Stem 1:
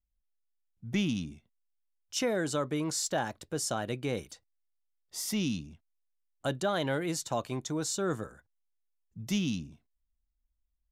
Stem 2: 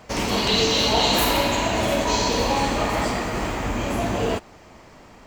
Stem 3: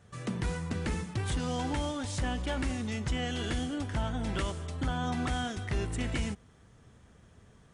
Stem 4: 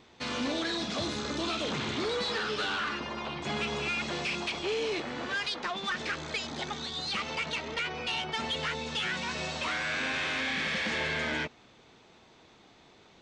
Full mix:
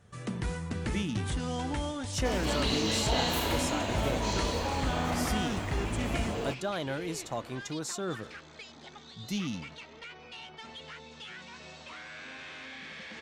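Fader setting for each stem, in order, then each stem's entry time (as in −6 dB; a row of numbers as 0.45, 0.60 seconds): −3.5, −11.5, −1.0, −13.0 decibels; 0.00, 2.15, 0.00, 2.25 seconds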